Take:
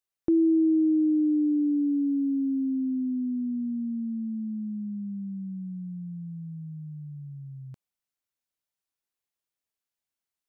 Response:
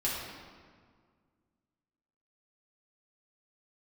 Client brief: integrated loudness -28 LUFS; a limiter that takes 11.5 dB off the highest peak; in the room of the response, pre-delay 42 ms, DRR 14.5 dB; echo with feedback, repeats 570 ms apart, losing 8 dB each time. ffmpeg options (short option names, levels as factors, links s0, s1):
-filter_complex "[0:a]alimiter=level_in=1.68:limit=0.0631:level=0:latency=1,volume=0.596,aecho=1:1:570|1140|1710|2280|2850:0.398|0.159|0.0637|0.0255|0.0102,asplit=2[s0][s1];[1:a]atrim=start_sample=2205,adelay=42[s2];[s1][s2]afir=irnorm=-1:irlink=0,volume=0.0841[s3];[s0][s3]amix=inputs=2:normalize=0,volume=1.78"